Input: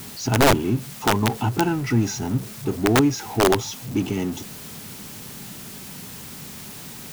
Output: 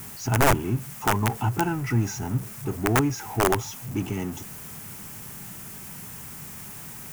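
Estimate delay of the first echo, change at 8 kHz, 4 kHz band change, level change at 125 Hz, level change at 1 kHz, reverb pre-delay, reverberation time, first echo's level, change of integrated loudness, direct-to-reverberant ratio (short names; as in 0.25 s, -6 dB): none, -3.0 dB, -8.0 dB, -1.5 dB, -2.0 dB, none, none, none, -5.5 dB, none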